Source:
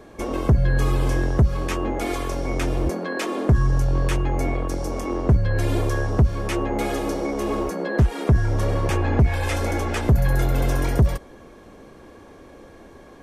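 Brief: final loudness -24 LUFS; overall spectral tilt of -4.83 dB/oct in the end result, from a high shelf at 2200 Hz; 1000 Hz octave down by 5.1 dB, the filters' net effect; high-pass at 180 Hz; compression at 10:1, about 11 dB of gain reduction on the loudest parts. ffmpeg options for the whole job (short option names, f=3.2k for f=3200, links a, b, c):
-af "highpass=180,equalizer=f=1k:t=o:g=-7.5,highshelf=f=2.2k:g=3.5,acompressor=threshold=-29dB:ratio=10,volume=9.5dB"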